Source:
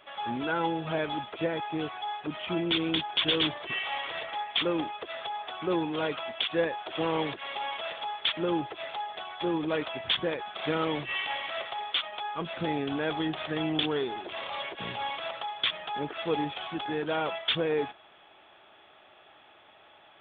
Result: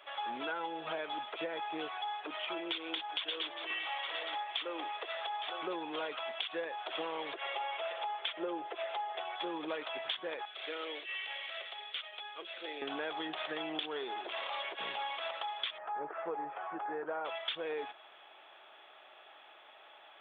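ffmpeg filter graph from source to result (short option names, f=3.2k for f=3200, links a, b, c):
-filter_complex "[0:a]asettb=1/sr,asplit=3[a][b][c];[a]atrim=end=1.944[d];[b]atrim=start=1.94:end=5.62,asetpts=PTS-STARTPTS,afade=t=in:d=0.004:c=qsin,afade=t=out:st=3.676:d=0.004:c=qsin,highpass=310,aecho=1:1:859:0.188,atrim=end_sample=162288[e];[c]atrim=start=5.616[f];[d][e]acrossfade=d=0.004:c1=hsin:c2=qsin[g];[g][f]acrossfade=d=0.004:c1=qsin:c2=hsin,asettb=1/sr,asplit=3[h][i][j];[h]atrim=end=7.334[k];[i]atrim=start=7.33:end=9.36,asetpts=PTS-STARTPTS,afade=t=in:d=0.004:c=qsin,afade=t=out:st=2.026:d=0.004:c=qsin,highpass=170,equalizer=f=240:t=q:w=4:g=-4,equalizer=f=420:t=q:w=4:g=8,equalizer=f=640:t=q:w=4:g=4,lowpass=f=3.5k:w=0.5412,lowpass=f=3.5k:w=1.3066,aecho=1:1:5.8:0.52,atrim=end_sample=89523[l];[j]atrim=start=9.356[m];[k][l]acrossfade=d=0.004:c1=hsin:c2=qsin[n];[n][m]acrossfade=d=0.004:c1=qsin:c2=hsin,asettb=1/sr,asplit=3[o][p][q];[o]atrim=end=10.454[r];[p]atrim=start=10.45:end=12.82,asetpts=PTS-STARTPTS,afade=t=in:d=0.004:c=qsin,afade=t=out:st=2.366:d=0.004:c=qsin,acrossover=split=2500[s][t];[t]acompressor=threshold=-41dB:ratio=4:attack=1:release=60[u];[s][u]amix=inputs=2:normalize=0,highpass=f=370:w=0.5412,highpass=f=370:w=1.3066,equalizer=f=920:w=0.8:g=-15[v];[q]atrim=start=12.816[w];[r][v]acrossfade=d=0.004:c1=hsin:c2=qsin[x];[x][w]acrossfade=d=0.004:c1=qsin:c2=hsin,asettb=1/sr,asplit=3[y][z][aa];[y]atrim=end=15.784[ab];[z]atrim=start=15.78:end=17.25,asetpts=PTS-STARTPTS,afade=t=in:d=0.004:c=qsin,afade=t=out:st=1.466:d=0.004:c=qsin,lowpass=f=1.6k:w=0.5412,lowpass=f=1.6k:w=1.3066,equalizer=f=260:w=5.1:g=-9,acompressor=mode=upward:threshold=-37dB:ratio=2.5:attack=3.2:release=140:knee=2.83:detection=peak[ac];[aa]atrim=start=17.246[ad];[ab][ac]acrossfade=d=0.004:c1=hsin:c2=qsin[ae];[ae][ad]acrossfade=d=0.004:c1=qsin:c2=hsin,highpass=480,acompressor=threshold=-35dB:ratio=6"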